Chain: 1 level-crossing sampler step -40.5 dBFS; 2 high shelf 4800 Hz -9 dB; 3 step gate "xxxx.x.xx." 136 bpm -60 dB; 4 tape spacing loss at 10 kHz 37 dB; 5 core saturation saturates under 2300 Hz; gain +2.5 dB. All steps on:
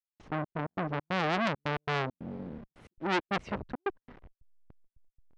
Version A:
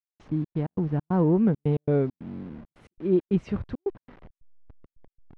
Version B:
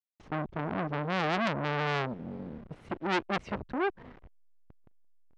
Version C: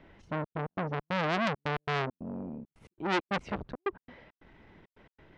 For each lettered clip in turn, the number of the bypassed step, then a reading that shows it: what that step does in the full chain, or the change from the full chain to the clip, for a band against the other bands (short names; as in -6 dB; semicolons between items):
5, crest factor change -7.5 dB; 3, loudness change +1.0 LU; 1, distortion -20 dB